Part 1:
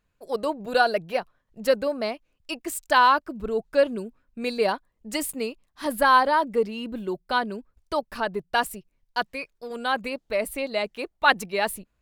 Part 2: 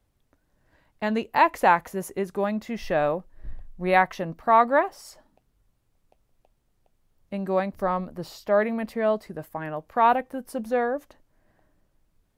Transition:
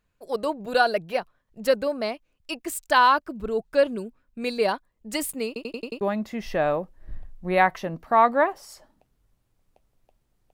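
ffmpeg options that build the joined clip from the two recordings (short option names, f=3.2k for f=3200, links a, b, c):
-filter_complex "[0:a]apad=whole_dur=10.53,atrim=end=10.53,asplit=6[a][b][c][d][e][f];[a]atrim=end=5.562[g];[b]atrim=start=5.468:end=5.562[h];[c]atrim=start=5.468:end=5.562[i];[d]atrim=start=5.468:end=5.562[j];[e]atrim=start=5.468:end=5.562[k];[f]atrim=start=5.468:end=5.562[l];[1:a]atrim=start=2.368:end=6.89[m];[g][h]acrossfade=d=0.004:c1=hsin:c2=hsin[n];[n][i]acrossfade=d=0.004:c1=hsin:c2=hsin[o];[o][j]acrossfade=d=0.004:c1=hsin:c2=hsin[p];[p][k]acrossfade=d=0.004:c1=hsin:c2=hsin[q];[q][l]acrossfade=d=0.004:c1=hsin:c2=hsin[r];[r][m]acrossfade=d=0.004:c1=hsin:c2=hsin"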